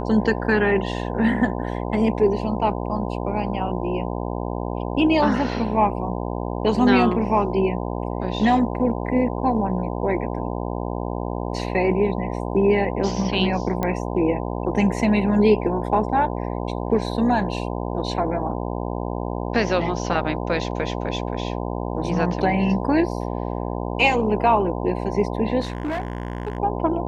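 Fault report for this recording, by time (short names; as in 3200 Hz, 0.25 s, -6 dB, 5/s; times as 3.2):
buzz 60 Hz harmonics 17 -27 dBFS
13.83 pop -11 dBFS
25.6–26.58 clipped -22 dBFS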